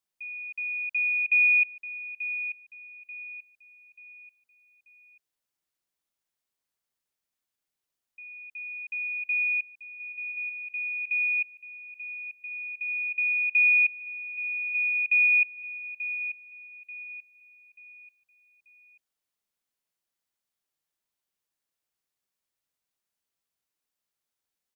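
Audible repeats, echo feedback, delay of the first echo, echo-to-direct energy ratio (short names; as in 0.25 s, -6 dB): 3, 37%, 0.886 s, -11.0 dB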